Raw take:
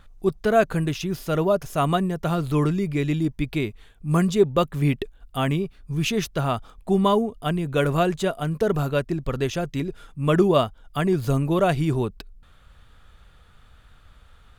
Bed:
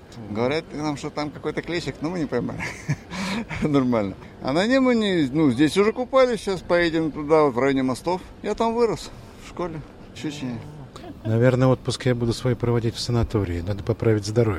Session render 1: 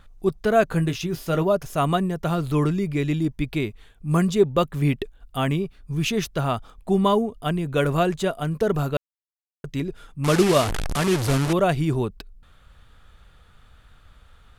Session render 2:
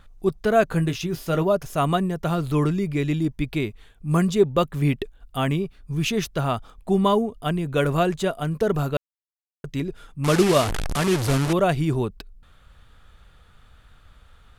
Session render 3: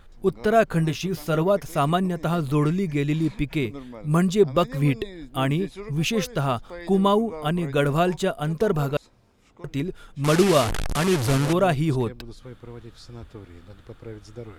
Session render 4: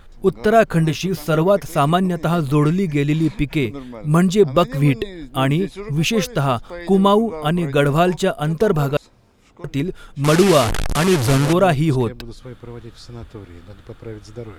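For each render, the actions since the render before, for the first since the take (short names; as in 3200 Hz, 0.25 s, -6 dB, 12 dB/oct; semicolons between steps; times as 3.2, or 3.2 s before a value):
0.69–1.43 doubler 18 ms -9 dB; 8.97–9.64 mute; 10.24–11.53 delta modulation 64 kbps, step -18.5 dBFS
nothing audible
add bed -19 dB
gain +5.5 dB; limiter -3 dBFS, peak gain reduction 2 dB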